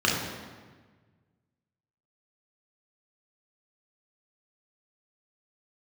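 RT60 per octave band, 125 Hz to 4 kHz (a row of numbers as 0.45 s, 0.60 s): 2.2 s, 1.7 s, 1.5 s, 1.4 s, 1.3 s, 1.1 s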